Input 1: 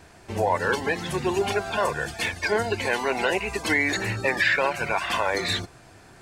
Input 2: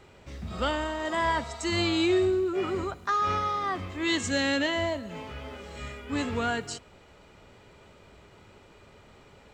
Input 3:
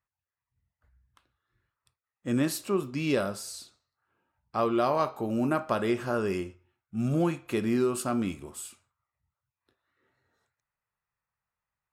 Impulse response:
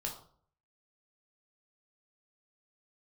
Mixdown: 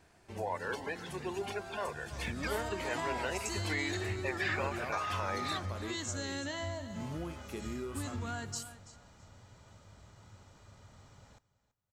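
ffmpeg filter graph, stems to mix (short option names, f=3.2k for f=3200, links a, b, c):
-filter_complex "[0:a]volume=-13.5dB,asplit=2[a][b];[b]volume=-14.5dB[c];[1:a]equalizer=f=100:t=o:w=0.67:g=9,equalizer=f=400:t=o:w=0.67:g=-10,equalizer=f=2.5k:t=o:w=0.67:g=-8,equalizer=f=6.3k:t=o:w=0.67:g=8,adelay=1850,volume=-4dB,asplit=2[d][e];[e]volume=-19.5dB[f];[2:a]highshelf=f=8k:g=9.5,volume=-12.5dB[g];[d][g]amix=inputs=2:normalize=0,acompressor=threshold=-35dB:ratio=6,volume=0dB[h];[c][f]amix=inputs=2:normalize=0,aecho=0:1:330|660|990|1320:1|0.22|0.0484|0.0106[i];[a][h][i]amix=inputs=3:normalize=0"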